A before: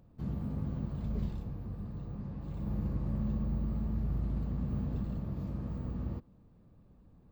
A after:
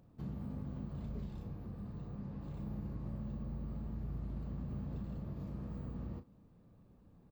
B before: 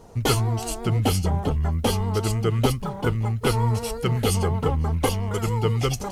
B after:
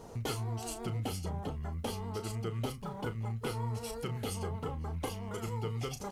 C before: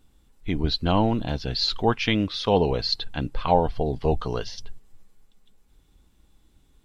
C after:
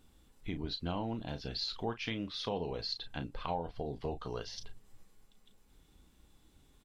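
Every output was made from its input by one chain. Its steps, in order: low shelf 67 Hz -7 dB; compressor 2.5:1, threshold -40 dBFS; doubler 35 ms -10 dB; gain -1 dB

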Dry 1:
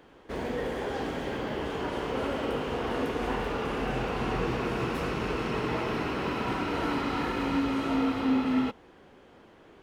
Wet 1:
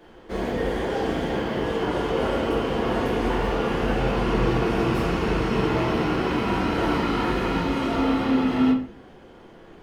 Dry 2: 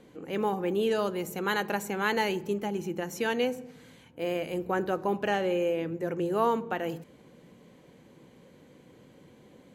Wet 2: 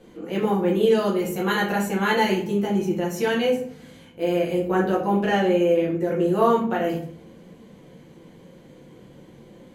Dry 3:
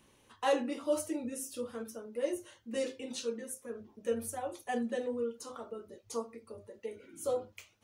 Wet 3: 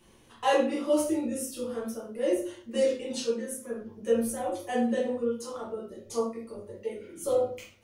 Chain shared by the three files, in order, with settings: shoebox room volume 42 m³, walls mixed, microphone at 1 m

